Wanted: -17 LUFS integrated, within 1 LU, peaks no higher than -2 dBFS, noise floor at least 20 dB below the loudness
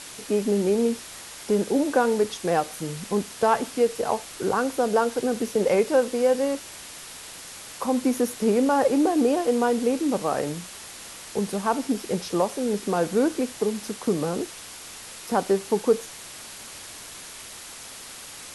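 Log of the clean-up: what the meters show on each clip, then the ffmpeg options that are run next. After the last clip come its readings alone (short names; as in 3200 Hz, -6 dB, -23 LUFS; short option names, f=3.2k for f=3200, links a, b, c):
noise floor -41 dBFS; noise floor target -45 dBFS; loudness -24.5 LUFS; peak -8.0 dBFS; loudness target -17.0 LUFS
-> -af "afftdn=nr=6:nf=-41"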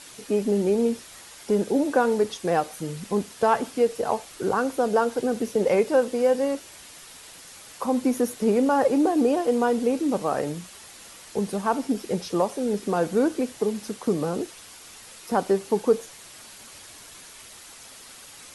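noise floor -46 dBFS; loudness -24.5 LUFS; peak -8.5 dBFS; loudness target -17.0 LUFS
-> -af "volume=7.5dB,alimiter=limit=-2dB:level=0:latency=1"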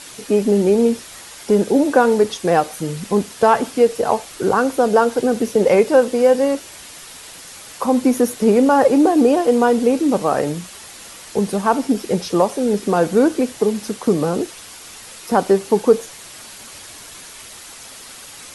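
loudness -17.0 LUFS; peak -2.0 dBFS; noise floor -38 dBFS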